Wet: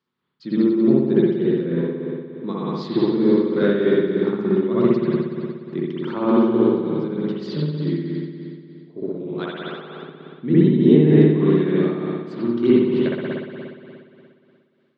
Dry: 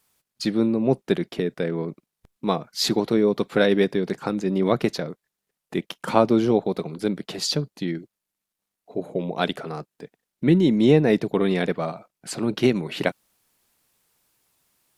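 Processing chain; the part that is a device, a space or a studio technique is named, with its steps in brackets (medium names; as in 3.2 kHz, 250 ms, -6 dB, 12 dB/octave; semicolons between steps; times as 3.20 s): 9.25–9.89 s: frequency weighting A; combo amplifier with spring reverb and tremolo (spring tank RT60 2.4 s, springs 59 ms, chirp 35 ms, DRR -8.5 dB; tremolo 3.3 Hz, depth 49%; cabinet simulation 99–4200 Hz, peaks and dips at 150 Hz +9 dB, 240 Hz +8 dB, 360 Hz +9 dB, 720 Hz -10 dB, 1.1 kHz +3 dB, 2.5 kHz -6 dB); trim -8.5 dB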